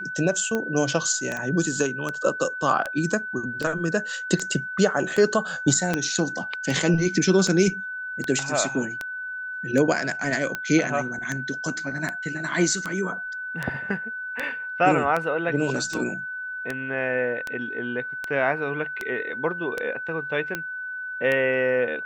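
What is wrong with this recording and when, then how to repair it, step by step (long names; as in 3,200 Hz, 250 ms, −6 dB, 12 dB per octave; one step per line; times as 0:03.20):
scratch tick 78 rpm −13 dBFS
whistle 1,500 Hz −30 dBFS
0:01.37: click −17 dBFS
0:05.94: click −9 dBFS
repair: click removal
notch filter 1,500 Hz, Q 30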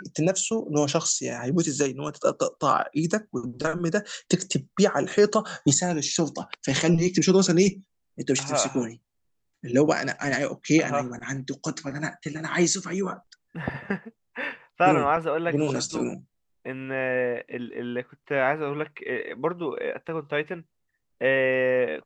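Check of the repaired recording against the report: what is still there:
none of them is left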